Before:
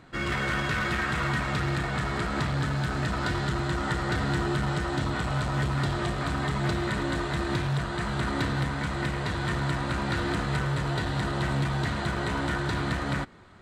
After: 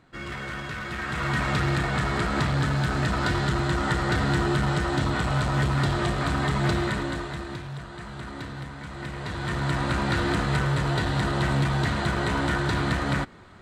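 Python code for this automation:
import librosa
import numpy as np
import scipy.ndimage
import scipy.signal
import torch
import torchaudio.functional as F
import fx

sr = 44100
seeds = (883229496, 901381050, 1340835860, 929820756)

y = fx.gain(x, sr, db=fx.line((0.86, -6.0), (1.44, 3.5), (6.79, 3.5), (7.63, -8.5), (8.82, -8.5), (9.81, 3.5)))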